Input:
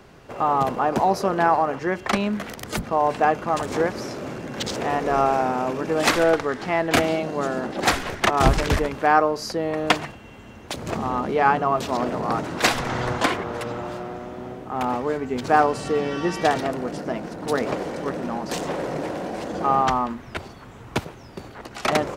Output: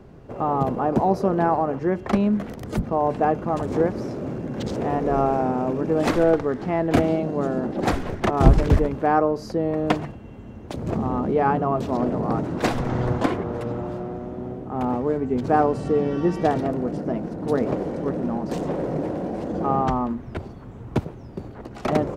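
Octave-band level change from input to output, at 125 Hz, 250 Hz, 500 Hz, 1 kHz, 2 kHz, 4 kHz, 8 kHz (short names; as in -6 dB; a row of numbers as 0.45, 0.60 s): +5.5, +4.0, +0.5, -3.0, -8.5, -11.0, -11.5 dB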